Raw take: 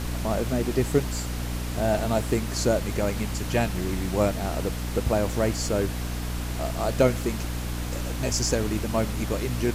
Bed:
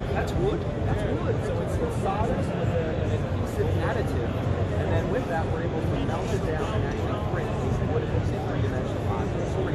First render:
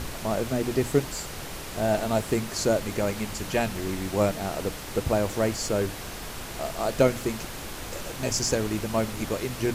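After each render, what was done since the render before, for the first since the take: notches 60/120/180/240/300 Hz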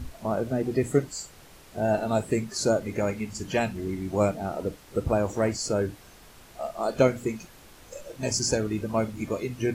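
noise print and reduce 14 dB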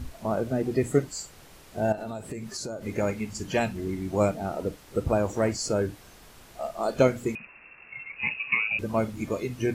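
1.92–2.85 compressor 12:1, threshold -31 dBFS; 7.35–8.79 inverted band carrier 2700 Hz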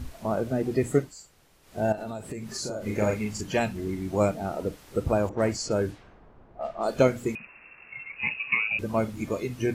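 0.96–1.8 dip -10.5 dB, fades 0.19 s; 2.45–3.41 doubler 38 ms -2.5 dB; 5.29–6.87 low-pass opened by the level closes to 720 Hz, open at -23 dBFS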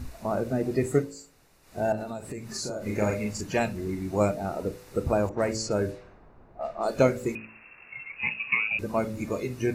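notch 3200 Hz, Q 6.5; de-hum 55.15 Hz, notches 11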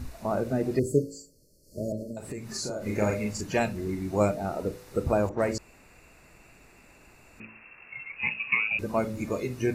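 0.79–2.17 brick-wall FIR band-stop 640–4200 Hz; 5.58–7.4 room tone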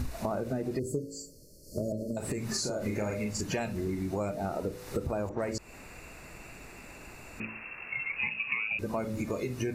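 in parallel at +2.5 dB: limiter -21 dBFS, peak gain reduction 10 dB; on the sum: compressor 6:1, threshold -30 dBFS, peak gain reduction 15.5 dB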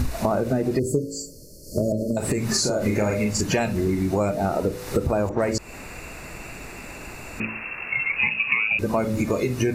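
gain +10 dB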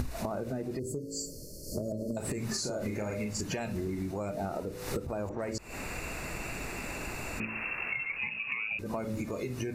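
compressor 10:1, threshold -31 dBFS, peak gain reduction 14.5 dB; attack slew limiter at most 130 dB/s

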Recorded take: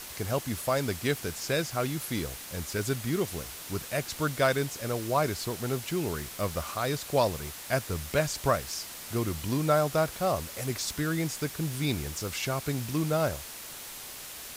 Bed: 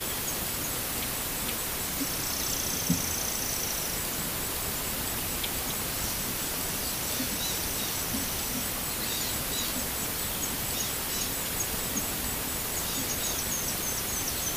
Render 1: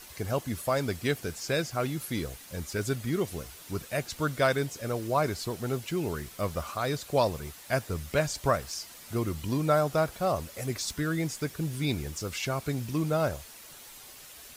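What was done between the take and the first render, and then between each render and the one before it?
denoiser 8 dB, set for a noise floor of -43 dBFS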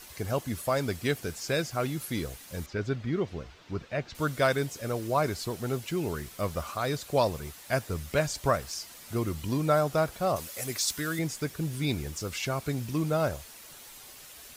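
2.66–4.15 air absorption 190 m; 10.36–11.19 tilt +2 dB/oct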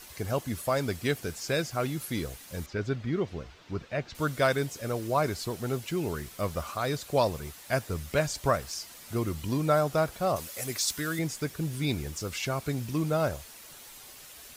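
nothing audible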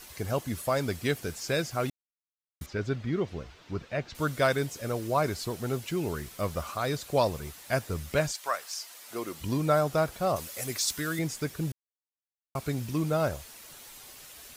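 1.9–2.61 mute; 8.31–9.4 HPF 1200 Hz -> 300 Hz; 11.72–12.55 mute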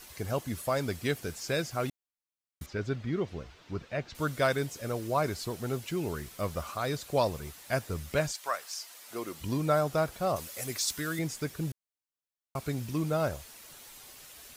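gain -2 dB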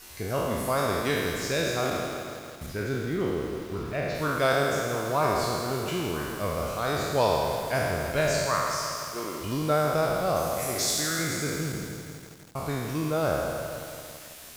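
spectral trails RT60 1.84 s; lo-fi delay 0.165 s, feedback 80%, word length 7-bit, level -11 dB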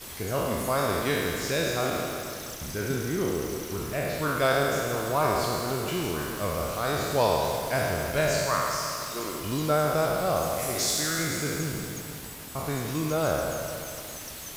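add bed -10.5 dB

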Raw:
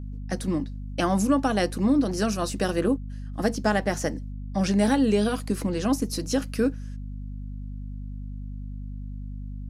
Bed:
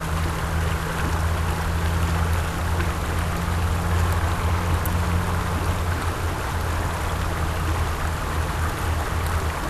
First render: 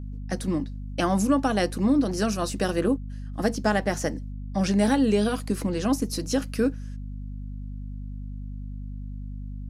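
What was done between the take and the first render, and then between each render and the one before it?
nothing audible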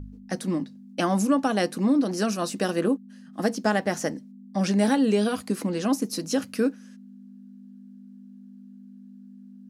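de-hum 50 Hz, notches 3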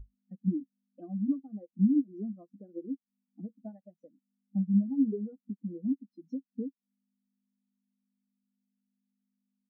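compressor 16:1, threshold -30 dBFS, peak gain reduction 14 dB; spectral expander 4:1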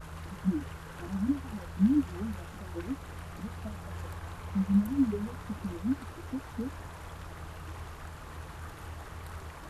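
add bed -19 dB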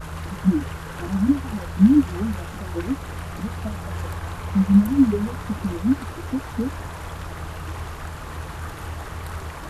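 gain +10.5 dB

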